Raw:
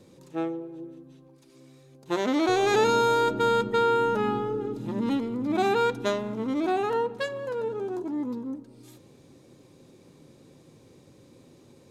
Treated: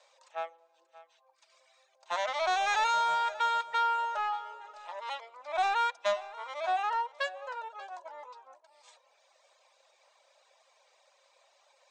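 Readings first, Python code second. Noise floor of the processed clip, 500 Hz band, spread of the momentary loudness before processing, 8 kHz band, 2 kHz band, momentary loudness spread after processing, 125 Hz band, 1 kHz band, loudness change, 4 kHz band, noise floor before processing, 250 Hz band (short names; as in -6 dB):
-69 dBFS, -13.0 dB, 12 LU, -5.0 dB, -1.0 dB, 17 LU, under -30 dB, -1.0 dB, -5.0 dB, -2.5 dB, -56 dBFS, under -30 dB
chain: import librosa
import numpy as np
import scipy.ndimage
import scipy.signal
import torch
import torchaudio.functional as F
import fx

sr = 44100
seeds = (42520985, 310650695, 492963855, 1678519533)

p1 = fx.dereverb_blind(x, sr, rt60_s=0.89)
p2 = scipy.signal.sosfilt(scipy.signal.cheby1(5, 1.0, [600.0, 8600.0], 'bandpass', fs=sr, output='sos'), p1)
p3 = 10.0 ** (-28.5 / 20.0) * (np.abs((p2 / 10.0 ** (-28.5 / 20.0) + 3.0) % 4.0 - 2.0) - 1.0)
p4 = p2 + (p3 * librosa.db_to_amplitude(-10.0))
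p5 = fx.air_absorb(p4, sr, metres=56.0)
y = p5 + fx.echo_single(p5, sr, ms=583, db=-18.0, dry=0)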